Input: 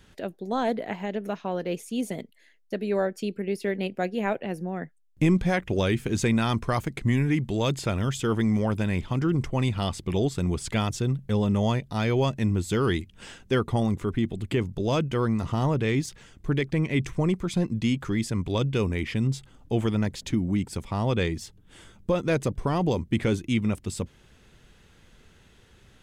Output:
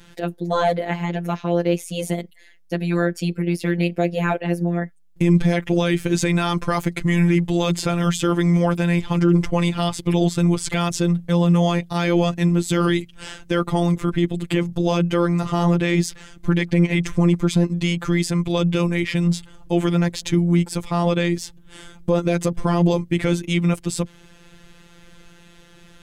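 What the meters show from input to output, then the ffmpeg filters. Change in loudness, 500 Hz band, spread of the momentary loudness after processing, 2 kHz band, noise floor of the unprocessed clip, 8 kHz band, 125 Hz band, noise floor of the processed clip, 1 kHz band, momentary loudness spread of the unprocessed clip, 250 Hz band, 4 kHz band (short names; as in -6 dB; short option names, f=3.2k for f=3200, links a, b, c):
+6.0 dB, +5.5 dB, 7 LU, +6.0 dB, -57 dBFS, +7.5 dB, +6.0 dB, -49 dBFS, +6.0 dB, 8 LU, +7.0 dB, +6.5 dB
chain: -af "afftfilt=real='hypot(re,im)*cos(PI*b)':imag='0':win_size=1024:overlap=0.75,alimiter=level_in=17dB:limit=-1dB:release=50:level=0:latency=1,volume=-5.5dB"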